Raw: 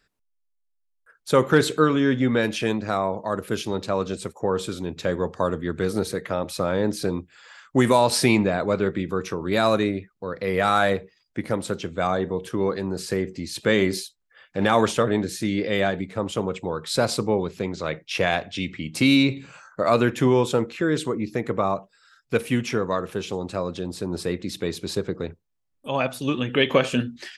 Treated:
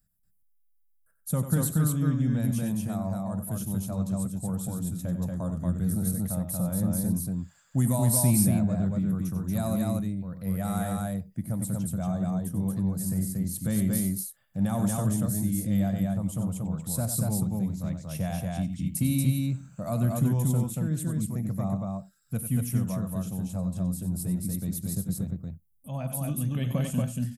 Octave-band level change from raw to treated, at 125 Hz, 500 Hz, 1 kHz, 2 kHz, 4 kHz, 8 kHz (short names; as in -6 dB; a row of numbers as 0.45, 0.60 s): +4.0, -15.5, -14.5, -19.5, -17.0, +3.0 dB